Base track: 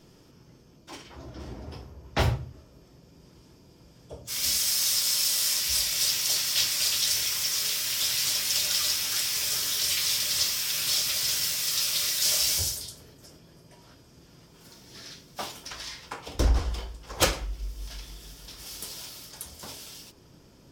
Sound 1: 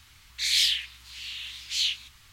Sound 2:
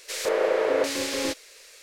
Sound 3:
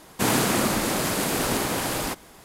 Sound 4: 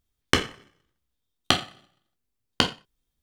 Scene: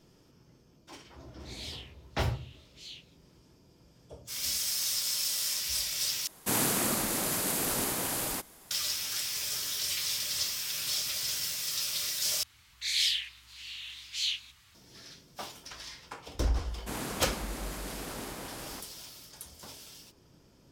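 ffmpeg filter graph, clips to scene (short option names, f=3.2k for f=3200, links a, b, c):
-filter_complex "[1:a]asplit=2[a][b];[3:a]asplit=2[c][d];[0:a]volume=-6dB[e];[a]flanger=delay=20:depth=6.1:speed=1.6[f];[c]crystalizer=i=1.5:c=0[g];[b]highpass=60[h];[e]asplit=3[i][j][k];[i]atrim=end=6.274[l];[g]atrim=end=2.44,asetpts=PTS-STARTPTS,volume=-9.5dB[m];[j]atrim=start=8.706:end=12.434[n];[h]atrim=end=2.32,asetpts=PTS-STARTPTS,volume=-5dB[o];[k]atrim=start=14.746[p];[f]atrim=end=2.32,asetpts=PTS-STARTPTS,volume=-17.5dB,afade=t=in:d=0.004:c=hsin,afade=t=out:st=2.316:d=0.004:c=hsin,adelay=1060[q];[d]atrim=end=2.44,asetpts=PTS-STARTPTS,volume=-15.5dB,afade=t=in:d=0.004:c=hsin,afade=t=out:st=2.436:d=0.004:c=hsin,adelay=16670[r];[l][m]acrossfade=d=0.004:c1=hsin:c2=hsin[s];[s][n]acrossfade=d=0.004:c1=hsin:c2=hsin[t];[t][o]acrossfade=d=0.004:c1=hsin:c2=hsin[u];[u][p]acrossfade=d=0.004:c1=hsin:c2=hsin[v];[v][q][r]amix=inputs=3:normalize=0"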